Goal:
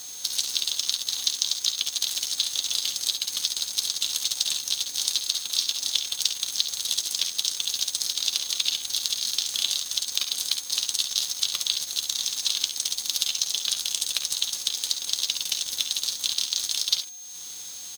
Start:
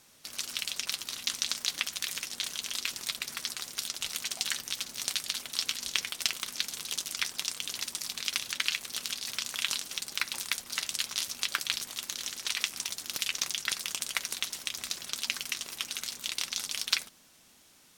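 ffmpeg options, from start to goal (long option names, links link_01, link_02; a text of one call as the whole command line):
ffmpeg -i in.wav -af "afftfilt=real='real(if(between(b,1,1008),(2*floor((b-1)/24)+1)*24-b,b),0)':imag='imag(if(between(b,1,1008),(2*floor((b-1)/24)+1)*24-b,b),0)*if(between(b,1,1008),-1,1)':win_size=2048:overlap=0.75,highshelf=frequency=2700:width_type=q:width=3:gain=11.5,acompressor=threshold=-35dB:ratio=3,aeval=exprs='val(0)+0.0126*sin(2*PI*6400*n/s)':channel_layout=same,aeval=exprs='sgn(val(0))*max(abs(val(0))-0.00708,0)':channel_layout=same,aecho=1:1:54|68:0.251|0.282,volume=8dB" out.wav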